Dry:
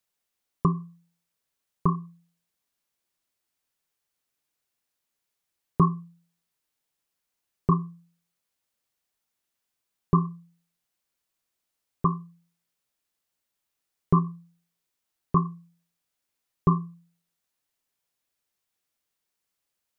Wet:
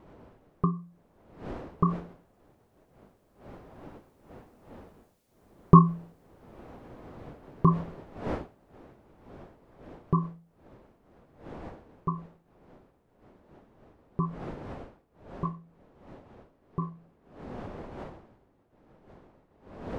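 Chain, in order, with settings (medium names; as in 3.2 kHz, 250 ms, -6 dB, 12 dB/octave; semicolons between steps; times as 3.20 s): Doppler pass-by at 5.09 s, 6 m/s, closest 9 m; wind noise 540 Hz -53 dBFS; trim +6.5 dB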